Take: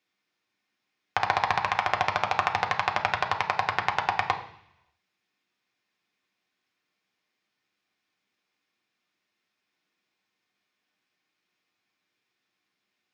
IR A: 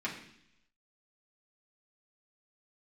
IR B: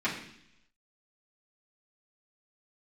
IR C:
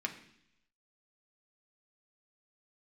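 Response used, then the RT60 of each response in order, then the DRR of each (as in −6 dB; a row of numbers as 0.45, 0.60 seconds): C; 0.70, 0.70, 0.70 seconds; −6.0, −10.5, 2.5 decibels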